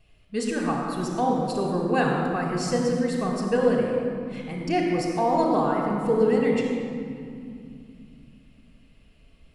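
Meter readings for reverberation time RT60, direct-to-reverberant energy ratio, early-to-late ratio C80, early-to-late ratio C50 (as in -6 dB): 2.4 s, -2.0 dB, 2.0 dB, 1.0 dB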